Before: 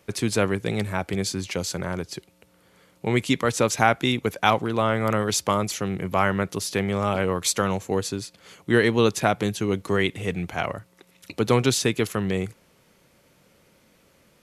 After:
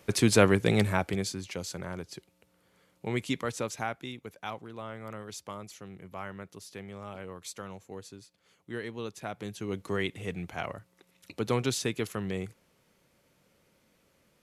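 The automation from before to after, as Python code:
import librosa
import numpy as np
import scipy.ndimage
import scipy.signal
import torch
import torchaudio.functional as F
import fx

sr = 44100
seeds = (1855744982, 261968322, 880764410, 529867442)

y = fx.gain(x, sr, db=fx.line((0.85, 1.5), (1.4, -9.0), (3.37, -9.0), (4.17, -18.5), (9.16, -18.5), (9.81, -8.5)))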